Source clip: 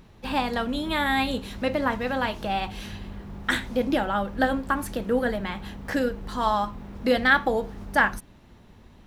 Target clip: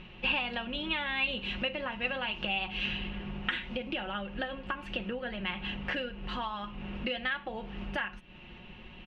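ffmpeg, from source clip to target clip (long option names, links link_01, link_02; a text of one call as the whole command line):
ffmpeg -i in.wav -af "aecho=1:1:5.5:0.52,acompressor=threshold=-34dB:ratio=12,lowpass=frequency=2800:width_type=q:width=8.5" out.wav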